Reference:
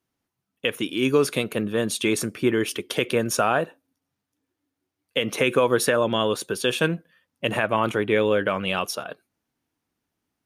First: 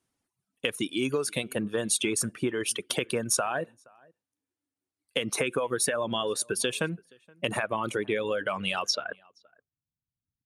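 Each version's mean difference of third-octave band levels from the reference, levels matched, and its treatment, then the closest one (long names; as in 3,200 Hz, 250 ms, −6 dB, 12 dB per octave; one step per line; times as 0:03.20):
4.0 dB: reverb reduction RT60 1.8 s
downward compressor, threshold −25 dBFS, peak gain reduction 10 dB
low-pass filter sweep 9,600 Hz → 130 Hz, 0:08.82–0:09.50
slap from a distant wall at 81 metres, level −27 dB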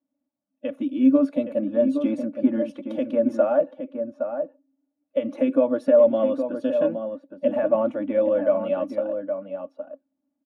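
13.5 dB: spectral magnitudes quantised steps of 15 dB
pair of resonant band-passes 400 Hz, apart 1.1 octaves
comb filter 3.5 ms, depth 68%
slap from a distant wall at 140 metres, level −7 dB
level +6.5 dB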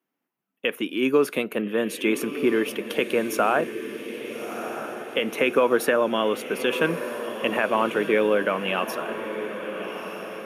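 5.5 dB: high-pass filter 190 Hz 24 dB per octave
flat-topped bell 5,900 Hz −9.5 dB
feedback delay with all-pass diffusion 1,279 ms, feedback 54%, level −9.5 dB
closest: first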